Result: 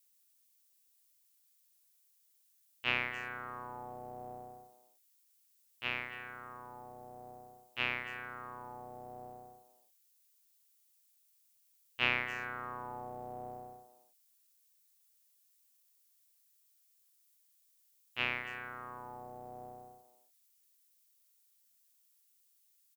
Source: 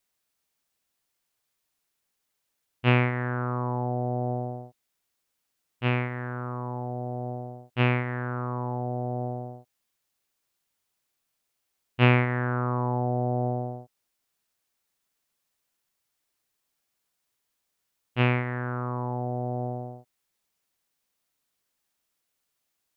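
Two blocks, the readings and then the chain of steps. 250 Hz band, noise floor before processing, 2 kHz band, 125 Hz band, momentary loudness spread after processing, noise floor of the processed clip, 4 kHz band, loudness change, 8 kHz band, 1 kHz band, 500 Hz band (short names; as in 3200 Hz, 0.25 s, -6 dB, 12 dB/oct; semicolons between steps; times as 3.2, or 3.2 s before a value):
-22.0 dB, -80 dBFS, -5.0 dB, -28.5 dB, 19 LU, -71 dBFS, -2.0 dB, -11.5 dB, n/a, -11.5 dB, -17.5 dB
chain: octaver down 2 oct, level +4 dB; differentiator; speakerphone echo 0.27 s, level -13 dB; gain +5.5 dB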